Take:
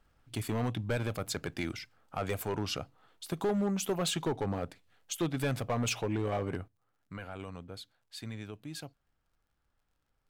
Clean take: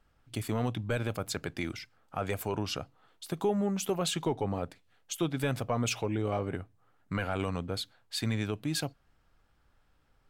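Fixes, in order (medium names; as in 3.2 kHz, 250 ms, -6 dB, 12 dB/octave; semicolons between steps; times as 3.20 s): clip repair -25.5 dBFS; de-click; gain correction +10.5 dB, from 6.68 s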